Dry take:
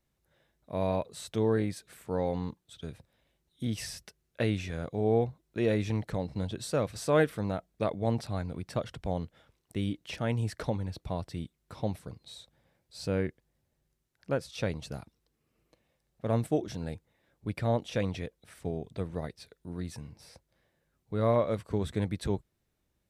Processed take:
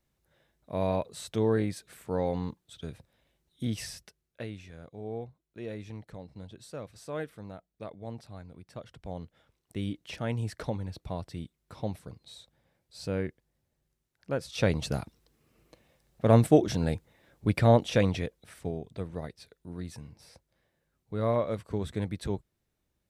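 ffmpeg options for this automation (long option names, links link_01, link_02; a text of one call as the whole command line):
ffmpeg -i in.wav -af "volume=21dB,afade=type=out:start_time=3.67:duration=0.82:silence=0.237137,afade=type=in:start_time=8.73:duration=1.14:silence=0.316228,afade=type=in:start_time=14.33:duration=0.49:silence=0.316228,afade=type=out:start_time=17.57:duration=1.26:silence=0.316228" out.wav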